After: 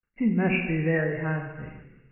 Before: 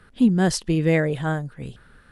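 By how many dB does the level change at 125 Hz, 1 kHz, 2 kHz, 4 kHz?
−4.5, −5.5, +0.5, −11.0 decibels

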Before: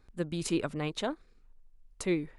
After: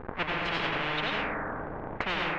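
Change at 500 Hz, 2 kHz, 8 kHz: 0.0 dB, +13.5 dB, below −15 dB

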